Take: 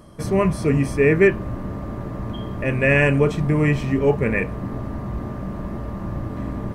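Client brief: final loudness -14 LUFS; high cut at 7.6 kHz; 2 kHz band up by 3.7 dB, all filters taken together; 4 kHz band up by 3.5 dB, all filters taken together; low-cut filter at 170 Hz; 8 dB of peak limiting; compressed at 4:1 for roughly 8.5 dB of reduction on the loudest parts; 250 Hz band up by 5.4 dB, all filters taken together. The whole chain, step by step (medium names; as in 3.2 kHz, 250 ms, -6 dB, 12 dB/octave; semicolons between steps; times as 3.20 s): high-pass 170 Hz; low-pass 7.6 kHz; peaking EQ 250 Hz +8.5 dB; peaking EQ 2 kHz +3.5 dB; peaking EQ 4 kHz +3.5 dB; compression 4:1, threshold -18 dBFS; trim +12 dB; peak limiter -3.5 dBFS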